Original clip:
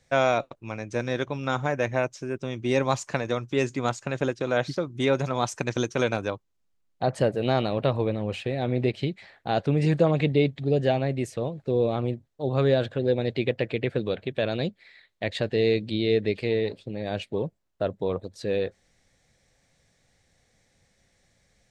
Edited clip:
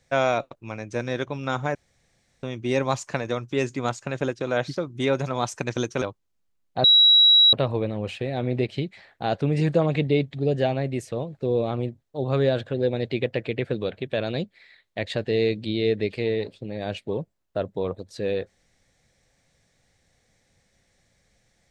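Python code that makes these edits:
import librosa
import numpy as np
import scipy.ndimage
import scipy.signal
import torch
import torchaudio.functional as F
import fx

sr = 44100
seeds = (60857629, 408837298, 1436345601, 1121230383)

y = fx.edit(x, sr, fx.room_tone_fill(start_s=1.75, length_s=0.68),
    fx.cut(start_s=6.02, length_s=0.25),
    fx.bleep(start_s=7.09, length_s=0.69, hz=3880.0, db=-11.5), tone=tone)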